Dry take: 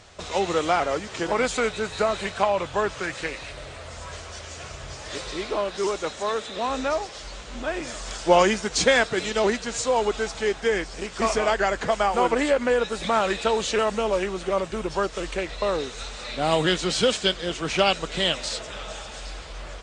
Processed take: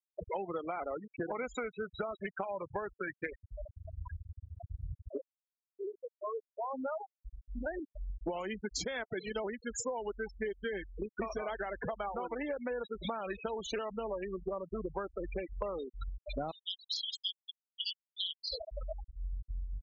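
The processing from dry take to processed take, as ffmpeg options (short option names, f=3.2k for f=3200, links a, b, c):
-filter_complex "[0:a]asettb=1/sr,asplit=3[a][b][c];[a]atrim=end=10.094[d];[b]atrim=start=10.09:end=10.86,asetpts=PTS-STARTPTS,afade=t=in:d=0.004:c=qsin,afade=t=out:st=0.766:d=0.004:c=qsin,aecho=1:1:5.1:0.52,atrim=end_sample=33957[e];[c]atrim=start=10.856[f];[d][e]acrossfade=d=0.004:c1=hsin:c2=qsin[g];[g][f]acrossfade=d=0.004:c1=qsin:c2=hsin,asettb=1/sr,asplit=3[h][i][j];[h]atrim=end=16.514[k];[i]atrim=start=16.51:end=18.5,asetpts=PTS-STARTPTS,afade=t=in:d=0.004:c=qsin,afade=t=out:st=1.986:d=0.004:c=qsin,asuperpass=centerf=5200:order=8:qfactor=1.1[l];[j]atrim=start=18.496[m];[k][l]acrossfade=d=0.004:c1=hsin:c2=qsin[n];[n][m]acrossfade=d=0.004:c1=qsin:c2=hsin,asplit=2[o][p];[o]atrim=end=5.27,asetpts=PTS-STARTPTS,afade=t=out:st=5.266:d=0.004:c=hsin[q];[p]atrim=start=5.27,asetpts=PTS-STARTPTS,afade=t=in:d=3.45[r];[q][r]concat=n=2:v=0:a=1,afftfilt=real='re*gte(hypot(re,im),0.0891)':imag='im*gte(hypot(re,im),0.0891)':win_size=1024:overlap=0.75,alimiter=limit=-14dB:level=0:latency=1:release=174,acompressor=threshold=-37dB:ratio=16,volume=3dB"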